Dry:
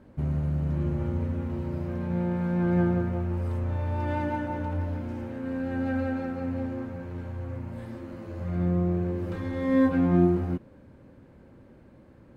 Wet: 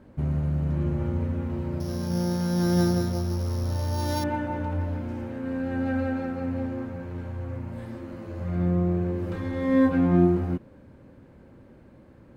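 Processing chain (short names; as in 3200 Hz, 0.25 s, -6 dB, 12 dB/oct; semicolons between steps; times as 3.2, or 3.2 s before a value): 1.8–4.24 sample sorter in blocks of 8 samples; gain +1.5 dB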